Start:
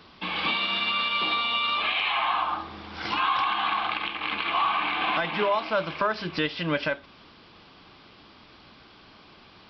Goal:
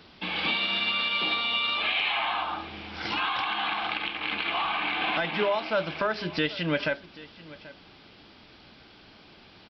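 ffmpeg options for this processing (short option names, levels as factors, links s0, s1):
-filter_complex "[0:a]equalizer=f=1100:w=4.4:g=-8.5,asplit=2[s0][s1];[s1]aecho=0:1:785:0.112[s2];[s0][s2]amix=inputs=2:normalize=0"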